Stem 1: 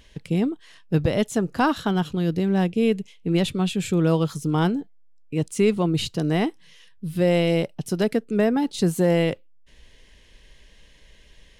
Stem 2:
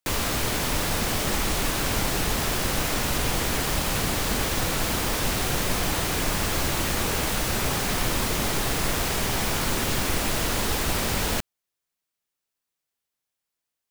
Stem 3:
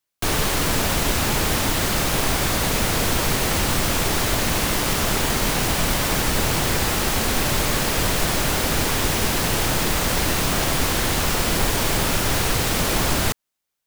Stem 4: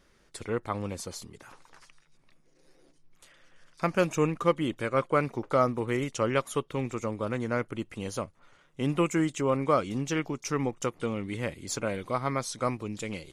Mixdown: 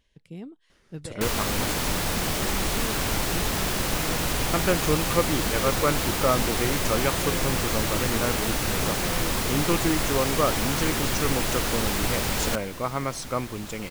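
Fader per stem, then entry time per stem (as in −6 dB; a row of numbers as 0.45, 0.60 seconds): −17.0, −1.0, −19.5, +1.0 decibels; 0.00, 1.15, 2.45, 0.70 seconds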